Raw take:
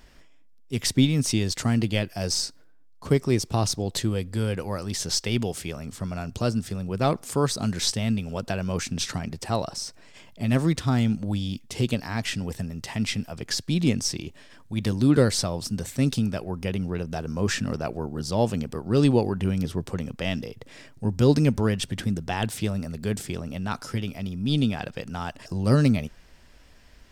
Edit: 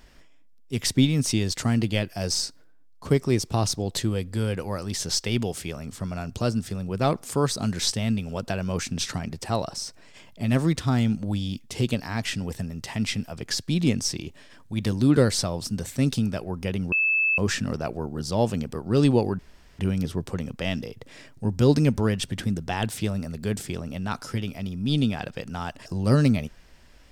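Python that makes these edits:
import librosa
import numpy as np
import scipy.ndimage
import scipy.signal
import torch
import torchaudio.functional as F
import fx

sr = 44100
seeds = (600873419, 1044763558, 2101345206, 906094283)

y = fx.edit(x, sr, fx.bleep(start_s=16.92, length_s=0.46, hz=2620.0, db=-19.0),
    fx.insert_room_tone(at_s=19.39, length_s=0.4), tone=tone)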